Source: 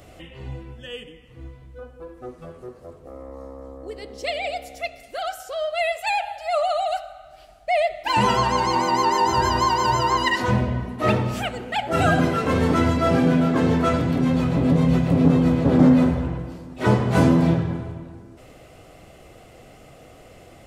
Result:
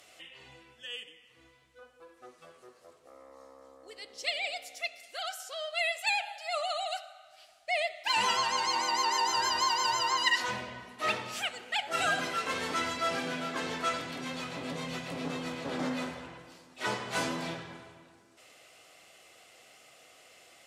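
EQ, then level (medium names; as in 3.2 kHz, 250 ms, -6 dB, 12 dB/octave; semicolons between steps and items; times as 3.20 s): band-pass filter 5.4 kHz, Q 0.5; 0.0 dB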